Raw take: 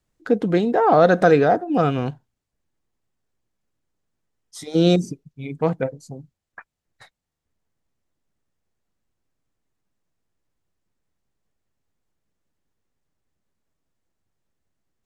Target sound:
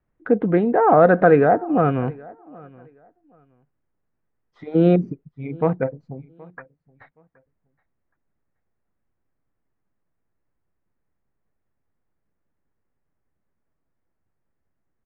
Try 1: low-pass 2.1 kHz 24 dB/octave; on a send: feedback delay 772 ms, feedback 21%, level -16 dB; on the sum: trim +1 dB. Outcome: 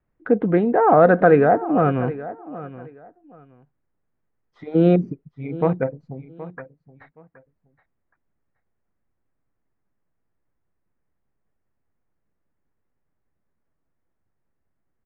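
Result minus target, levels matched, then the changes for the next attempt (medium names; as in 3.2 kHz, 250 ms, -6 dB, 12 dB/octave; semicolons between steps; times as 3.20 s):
echo-to-direct +8 dB
change: feedback delay 772 ms, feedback 21%, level -24 dB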